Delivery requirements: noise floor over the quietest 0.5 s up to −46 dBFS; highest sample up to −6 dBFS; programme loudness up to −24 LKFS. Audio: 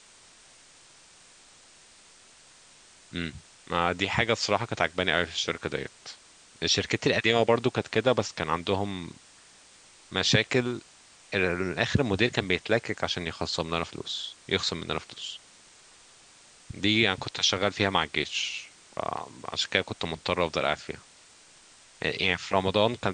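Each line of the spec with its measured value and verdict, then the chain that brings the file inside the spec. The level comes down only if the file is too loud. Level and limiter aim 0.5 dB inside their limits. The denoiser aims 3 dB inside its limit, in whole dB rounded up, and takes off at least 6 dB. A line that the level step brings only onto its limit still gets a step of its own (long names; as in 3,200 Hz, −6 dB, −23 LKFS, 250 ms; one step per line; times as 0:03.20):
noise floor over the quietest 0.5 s −55 dBFS: in spec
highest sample −4.0 dBFS: out of spec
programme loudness −27.5 LKFS: in spec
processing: brickwall limiter −6.5 dBFS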